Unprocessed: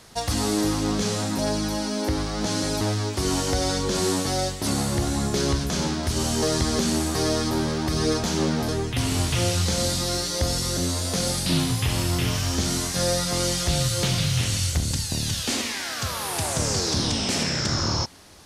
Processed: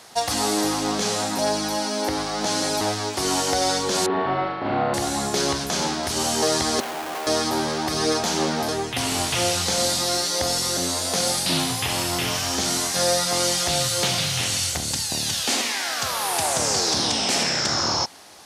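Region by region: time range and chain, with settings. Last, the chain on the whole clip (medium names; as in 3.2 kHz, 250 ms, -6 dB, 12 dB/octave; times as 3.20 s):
4.06–4.94 s: Gaussian low-pass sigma 3.8 samples + flutter echo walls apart 6.3 m, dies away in 1.4 s
6.80–7.27 s: band-pass 660–2300 Hz + Schmitt trigger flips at -38 dBFS
whole clip: high-pass 460 Hz 6 dB/octave; peaking EQ 770 Hz +5.5 dB 0.47 oct; trim +4 dB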